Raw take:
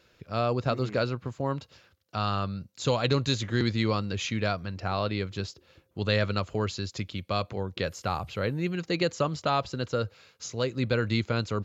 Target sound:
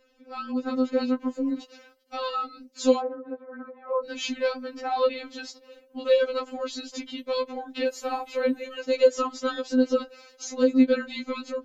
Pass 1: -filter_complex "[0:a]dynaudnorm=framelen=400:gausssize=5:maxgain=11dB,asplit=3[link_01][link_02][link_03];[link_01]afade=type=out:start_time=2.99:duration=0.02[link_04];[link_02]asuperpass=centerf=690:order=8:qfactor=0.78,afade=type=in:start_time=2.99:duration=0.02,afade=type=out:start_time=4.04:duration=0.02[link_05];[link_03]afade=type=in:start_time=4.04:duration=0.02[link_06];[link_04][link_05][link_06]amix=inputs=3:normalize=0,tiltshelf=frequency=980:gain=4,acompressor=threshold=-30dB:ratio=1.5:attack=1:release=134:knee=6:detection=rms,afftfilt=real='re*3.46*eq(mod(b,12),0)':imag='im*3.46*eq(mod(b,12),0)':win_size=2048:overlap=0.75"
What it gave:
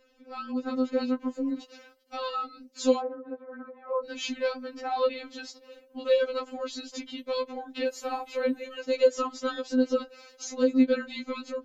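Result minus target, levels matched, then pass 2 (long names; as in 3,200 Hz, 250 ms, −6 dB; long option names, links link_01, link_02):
downward compressor: peak gain reduction +2.5 dB
-filter_complex "[0:a]dynaudnorm=framelen=400:gausssize=5:maxgain=11dB,asplit=3[link_01][link_02][link_03];[link_01]afade=type=out:start_time=2.99:duration=0.02[link_04];[link_02]asuperpass=centerf=690:order=8:qfactor=0.78,afade=type=in:start_time=2.99:duration=0.02,afade=type=out:start_time=4.04:duration=0.02[link_05];[link_03]afade=type=in:start_time=4.04:duration=0.02[link_06];[link_04][link_05][link_06]amix=inputs=3:normalize=0,tiltshelf=frequency=980:gain=4,acompressor=threshold=-22dB:ratio=1.5:attack=1:release=134:knee=6:detection=rms,afftfilt=real='re*3.46*eq(mod(b,12),0)':imag='im*3.46*eq(mod(b,12),0)':win_size=2048:overlap=0.75"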